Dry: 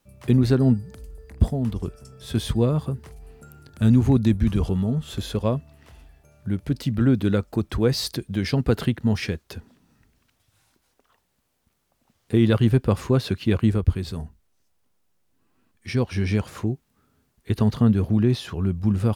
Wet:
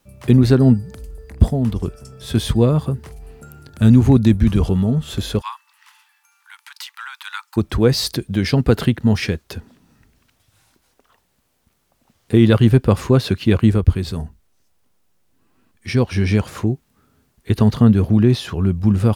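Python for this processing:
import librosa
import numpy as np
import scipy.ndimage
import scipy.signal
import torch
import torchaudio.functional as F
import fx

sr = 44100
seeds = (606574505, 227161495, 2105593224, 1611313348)

y = fx.steep_highpass(x, sr, hz=860.0, slope=96, at=(5.4, 7.56), fade=0.02)
y = y * librosa.db_to_amplitude(6.0)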